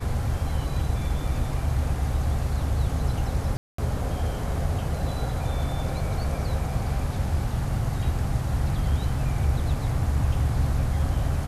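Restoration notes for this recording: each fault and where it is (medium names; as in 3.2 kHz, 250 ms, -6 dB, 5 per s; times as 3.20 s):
3.57–3.78 s: dropout 214 ms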